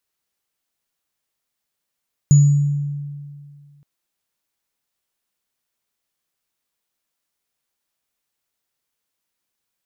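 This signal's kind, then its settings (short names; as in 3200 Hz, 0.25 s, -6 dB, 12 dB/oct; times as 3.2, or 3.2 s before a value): sine partials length 1.52 s, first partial 144 Hz, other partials 6890 Hz, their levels -14.5 dB, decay 2.12 s, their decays 0.65 s, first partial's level -6 dB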